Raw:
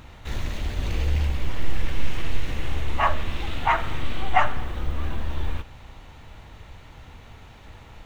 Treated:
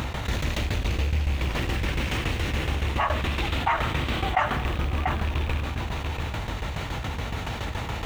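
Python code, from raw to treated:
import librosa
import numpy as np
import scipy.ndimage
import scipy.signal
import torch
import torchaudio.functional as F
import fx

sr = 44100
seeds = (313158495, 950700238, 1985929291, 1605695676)

p1 = fx.rattle_buzz(x, sr, strikes_db=-28.0, level_db=-28.0)
p2 = scipy.signal.sosfilt(scipy.signal.butter(4, 43.0, 'highpass', fs=sr, output='sos'), p1)
p3 = fx.tremolo_shape(p2, sr, shape='saw_down', hz=7.1, depth_pct=95)
p4 = p3 + fx.echo_single(p3, sr, ms=689, db=-13.0, dry=0)
p5 = fx.env_flatten(p4, sr, amount_pct=70)
y = F.gain(torch.from_numpy(p5), -4.0).numpy()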